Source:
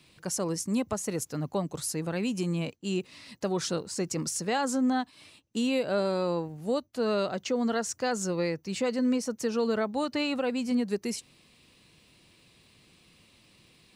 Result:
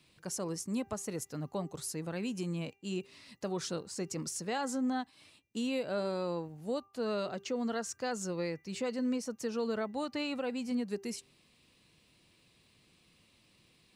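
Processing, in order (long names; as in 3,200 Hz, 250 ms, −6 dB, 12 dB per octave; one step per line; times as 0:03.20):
hum removal 395.4 Hz, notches 7
level −6.5 dB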